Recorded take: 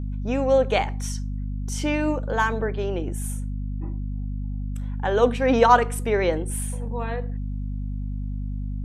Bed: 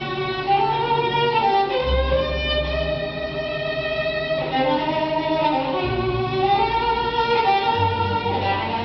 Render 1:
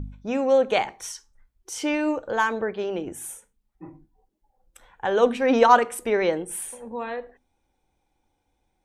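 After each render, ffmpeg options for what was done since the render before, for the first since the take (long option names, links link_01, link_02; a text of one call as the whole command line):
ffmpeg -i in.wav -af "bandreject=frequency=50:width_type=h:width=4,bandreject=frequency=100:width_type=h:width=4,bandreject=frequency=150:width_type=h:width=4,bandreject=frequency=200:width_type=h:width=4,bandreject=frequency=250:width_type=h:width=4" out.wav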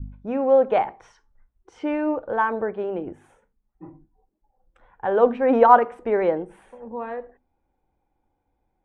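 ffmpeg -i in.wav -af "lowpass=1500,adynamicequalizer=threshold=0.0398:dfrequency=760:dqfactor=1.1:tfrequency=760:tqfactor=1.1:attack=5:release=100:ratio=0.375:range=2:mode=boostabove:tftype=bell" out.wav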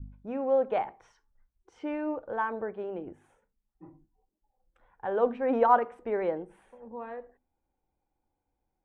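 ffmpeg -i in.wav -af "volume=-8.5dB" out.wav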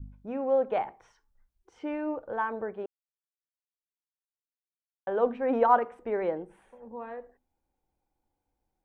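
ffmpeg -i in.wav -filter_complex "[0:a]asplit=3[link_01][link_02][link_03];[link_01]atrim=end=2.86,asetpts=PTS-STARTPTS,afade=type=out:start_time=2.856:duration=0.004:curve=hsin[link_04];[link_02]atrim=start=2.86:end=5.07,asetpts=PTS-STARTPTS,volume=0[link_05];[link_03]atrim=start=5.07,asetpts=PTS-STARTPTS,afade=type=in:duration=0.004:curve=hsin[link_06];[link_04][link_05][link_06]concat=n=3:v=0:a=1" out.wav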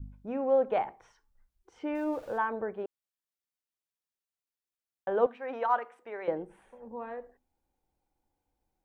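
ffmpeg -i in.wav -filter_complex "[0:a]asettb=1/sr,asplit=3[link_01][link_02][link_03];[link_01]atrim=end=1.954[link_04];[link_02]atrim=start=1.95:end=2.38,asetpts=PTS-STARTPTS,afade=type=in:duration=0.004:curve=qsin,afade=type=out:start_time=0.426:duration=0.004:curve=qsin,aeval=exprs='val(0)+0.5*0.00355*sgn(val(0))':channel_layout=same[link_05];[link_03]atrim=start=2.376[link_06];[link_04][link_05]acrossfade=duration=0.004:curve1=hsin:curve2=qsin[link_07];[link_07][link_06]acrossfade=duration=0.004:curve1=qsin:curve2=hsin,asettb=1/sr,asplit=3[link_08][link_09][link_10];[link_08]atrim=end=5.264[link_11];[link_09]atrim=start=5.26:end=6.28,asetpts=PTS-STARTPTS,afade=type=in:duration=0.004:curve=qsin,afade=type=out:start_time=1.016:duration=0.004:curve=qsin,highpass=frequency=1500:poles=1[link_12];[link_10]atrim=start=6.276[link_13];[link_11][link_12]acrossfade=duration=0.004:curve1=hsin:curve2=qsin[link_14];[link_14][link_13]acrossfade=duration=0.004:curve1=qsin:curve2=hsin" out.wav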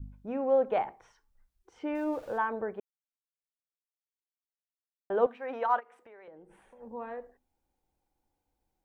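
ffmpeg -i in.wav -filter_complex "[0:a]asplit=3[link_01][link_02][link_03];[link_01]afade=type=out:start_time=5.79:duration=0.02[link_04];[link_02]acompressor=threshold=-52dB:ratio=4:attack=3.2:release=140:knee=1:detection=peak,afade=type=in:start_time=5.79:duration=0.02,afade=type=out:start_time=6.79:duration=0.02[link_05];[link_03]afade=type=in:start_time=6.79:duration=0.02[link_06];[link_04][link_05][link_06]amix=inputs=3:normalize=0,asplit=3[link_07][link_08][link_09];[link_07]atrim=end=2.8,asetpts=PTS-STARTPTS,afade=type=out:start_time=2.796:duration=0.004:curve=hsin[link_10];[link_08]atrim=start=2.8:end=5.1,asetpts=PTS-STARTPTS,volume=0[link_11];[link_09]atrim=start=5.1,asetpts=PTS-STARTPTS,afade=type=in:duration=0.004:curve=hsin[link_12];[link_10][link_11][link_12]concat=n=3:v=0:a=1" out.wav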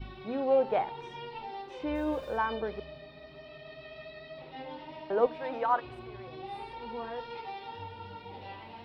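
ffmpeg -i in.wav -i bed.wav -filter_complex "[1:a]volume=-23dB[link_01];[0:a][link_01]amix=inputs=2:normalize=0" out.wav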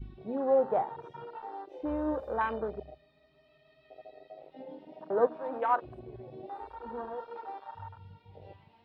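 ffmpeg -i in.wav -af "afwtdn=0.0158" out.wav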